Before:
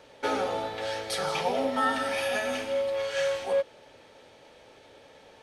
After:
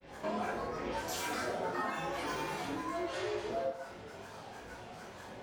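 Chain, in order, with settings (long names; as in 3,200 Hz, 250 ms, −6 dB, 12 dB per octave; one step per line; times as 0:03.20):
graphic EQ with 10 bands 125 Hz +7 dB, 500 Hz −5 dB, 1,000 Hz +7 dB, 2,000 Hz −6 dB
downward compressor 4 to 1, threshold −42 dBFS, peak gain reduction 17.5 dB
granular cloud, spray 33 ms, pitch spread up and down by 12 semitones
convolution reverb, pre-delay 8 ms, DRR −5.5 dB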